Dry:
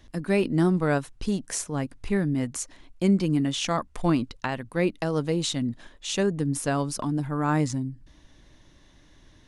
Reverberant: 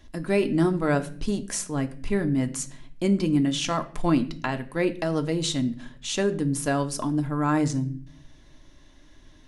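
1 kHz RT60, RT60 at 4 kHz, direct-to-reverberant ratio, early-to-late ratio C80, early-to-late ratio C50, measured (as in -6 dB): 0.45 s, 0.45 s, 7.0 dB, 19.5 dB, 16.0 dB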